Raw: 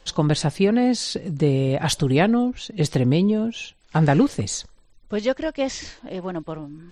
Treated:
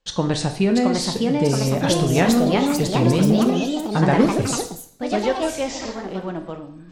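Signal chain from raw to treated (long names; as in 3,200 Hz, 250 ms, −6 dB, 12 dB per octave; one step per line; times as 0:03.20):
noise gate with hold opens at −42 dBFS
coupled-rooms reverb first 0.71 s, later 2.1 s, from −26 dB, DRR 6 dB
delay with pitch and tempo change per echo 700 ms, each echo +3 semitones, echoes 3
level −1 dB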